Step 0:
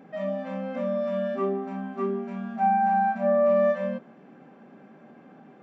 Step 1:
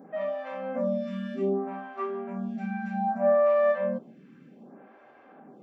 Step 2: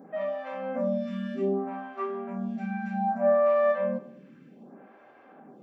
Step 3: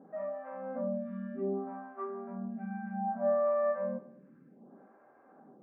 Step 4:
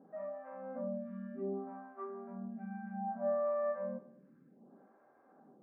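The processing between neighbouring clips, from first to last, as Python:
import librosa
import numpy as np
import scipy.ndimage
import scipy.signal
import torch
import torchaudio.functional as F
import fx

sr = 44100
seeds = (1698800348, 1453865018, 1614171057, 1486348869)

y1 = fx.stagger_phaser(x, sr, hz=0.64)
y1 = y1 * librosa.db_to_amplitude(2.0)
y2 = fx.echo_feedback(y1, sr, ms=103, feedback_pct=49, wet_db=-19.5)
y3 = scipy.signal.sosfilt(scipy.signal.butter(4, 1600.0, 'lowpass', fs=sr, output='sos'), y2)
y3 = y3 * librosa.db_to_amplitude(-6.5)
y4 = fx.air_absorb(y3, sr, metres=150.0)
y4 = y4 * librosa.db_to_amplitude(-4.5)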